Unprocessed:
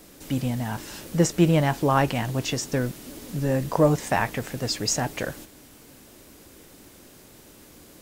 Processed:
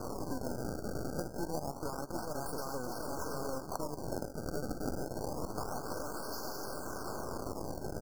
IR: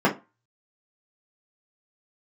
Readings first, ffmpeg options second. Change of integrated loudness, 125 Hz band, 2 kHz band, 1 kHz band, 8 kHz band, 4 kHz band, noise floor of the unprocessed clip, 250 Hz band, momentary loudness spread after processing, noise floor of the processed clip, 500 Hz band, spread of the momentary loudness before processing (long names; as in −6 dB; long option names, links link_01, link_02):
−15.0 dB, −17.5 dB, −16.0 dB, −11.0 dB, −13.5 dB, −16.0 dB, −50 dBFS, −14.0 dB, 2 LU, −45 dBFS, −11.5 dB, 12 LU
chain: -filter_complex "[0:a]aeval=exprs='val(0)+0.5*0.0355*sgn(val(0))':channel_layout=same,highpass=390,lowpass=7100,asplit=2[link_01][link_02];[link_02]aecho=0:1:731|1462|2193|2924|3655:0.447|0.188|0.0788|0.0331|0.0139[link_03];[link_01][link_03]amix=inputs=2:normalize=0,acrusher=samples=24:mix=1:aa=0.000001:lfo=1:lforange=38.4:lforate=0.27,acompressor=threshold=-31dB:ratio=12,aeval=exprs='0.1*(cos(1*acos(clip(val(0)/0.1,-1,1)))-cos(1*PI/2))+0.0355*(cos(6*acos(clip(val(0)/0.1,-1,1)))-cos(6*PI/2))+0.0447*(cos(8*acos(clip(val(0)/0.1,-1,1)))-cos(8*PI/2))':channel_layout=same,equalizer=frequency=2400:width_type=o:width=0.91:gain=-7,afftfilt=real='re*(1-between(b*sr/4096,1600,4300))':imag='im*(1-between(b*sr/4096,1600,4300))':win_size=4096:overlap=0.75,volume=-4.5dB"